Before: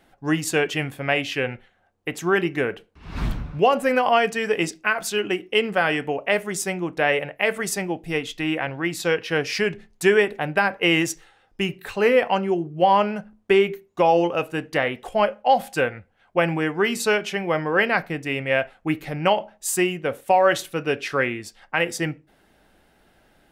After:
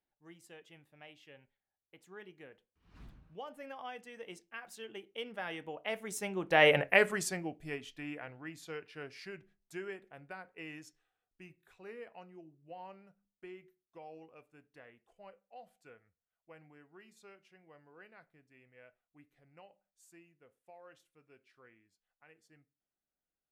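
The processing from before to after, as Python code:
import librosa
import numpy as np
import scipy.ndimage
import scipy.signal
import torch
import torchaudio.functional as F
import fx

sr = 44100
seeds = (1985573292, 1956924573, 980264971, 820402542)

y = fx.doppler_pass(x, sr, speed_mps=23, closest_m=2.9, pass_at_s=6.79)
y = F.gain(torch.from_numpy(y), 1.5).numpy()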